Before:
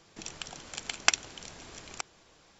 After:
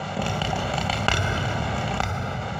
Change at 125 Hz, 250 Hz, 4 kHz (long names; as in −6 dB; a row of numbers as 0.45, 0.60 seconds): +30.0, +22.0, +6.0 decibels